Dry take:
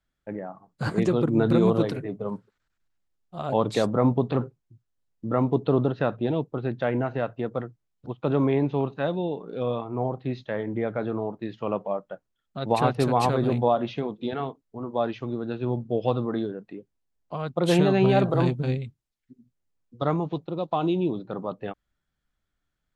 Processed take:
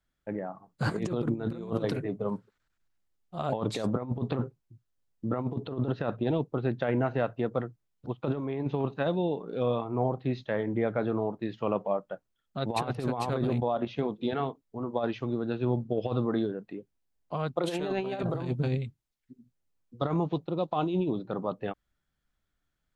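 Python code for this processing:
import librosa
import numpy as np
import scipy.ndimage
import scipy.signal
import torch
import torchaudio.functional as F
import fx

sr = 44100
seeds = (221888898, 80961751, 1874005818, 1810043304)

y = fx.level_steps(x, sr, step_db=9, at=(13.47, 13.99))
y = fx.highpass(y, sr, hz=270.0, slope=12, at=(17.56, 18.23))
y = fx.over_compress(y, sr, threshold_db=-25.0, ratio=-0.5)
y = y * 10.0 ** (-2.5 / 20.0)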